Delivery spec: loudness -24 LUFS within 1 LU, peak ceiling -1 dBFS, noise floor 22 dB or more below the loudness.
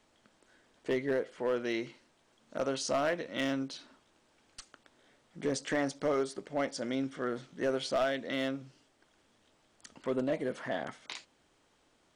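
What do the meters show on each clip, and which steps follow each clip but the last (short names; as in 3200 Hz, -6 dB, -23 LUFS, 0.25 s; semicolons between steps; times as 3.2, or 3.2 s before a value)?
clipped 0.6%; flat tops at -23.5 dBFS; loudness -34.5 LUFS; peak -23.5 dBFS; loudness target -24.0 LUFS
-> clip repair -23.5 dBFS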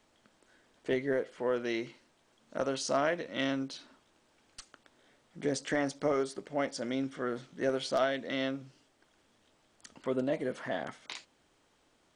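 clipped 0.0%; loudness -34.0 LUFS; peak -14.5 dBFS; loudness target -24.0 LUFS
-> gain +10 dB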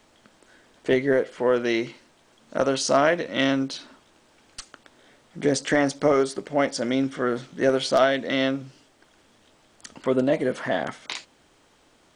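loudness -24.0 LUFS; peak -4.5 dBFS; noise floor -60 dBFS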